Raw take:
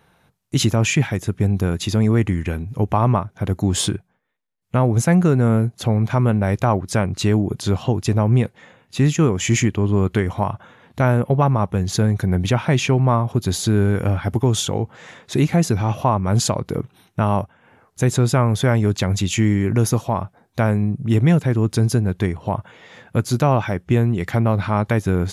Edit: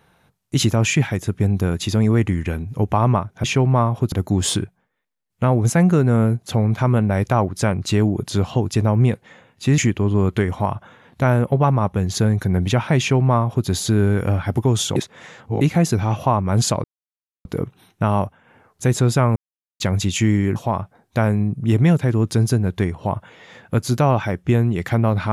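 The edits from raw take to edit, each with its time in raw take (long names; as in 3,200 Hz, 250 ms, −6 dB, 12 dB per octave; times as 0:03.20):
0:09.10–0:09.56: remove
0:12.77–0:13.45: duplicate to 0:03.44
0:14.74–0:15.39: reverse
0:16.62: splice in silence 0.61 s
0:18.53–0:18.97: silence
0:19.73–0:19.98: remove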